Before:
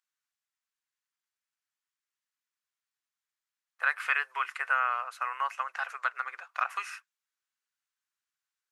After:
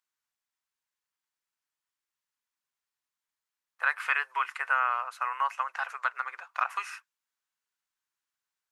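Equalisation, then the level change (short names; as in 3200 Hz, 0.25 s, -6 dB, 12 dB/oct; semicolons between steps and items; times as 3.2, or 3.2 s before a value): bell 940 Hz +5.5 dB 0.41 oct; 0.0 dB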